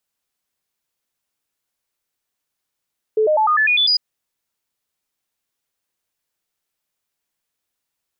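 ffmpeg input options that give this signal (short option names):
-f lavfi -i "aevalsrc='0.237*clip(min(mod(t,0.1),0.1-mod(t,0.1))/0.005,0,1)*sin(2*PI*434*pow(2,floor(t/0.1)/2)*mod(t,0.1))':d=0.8:s=44100"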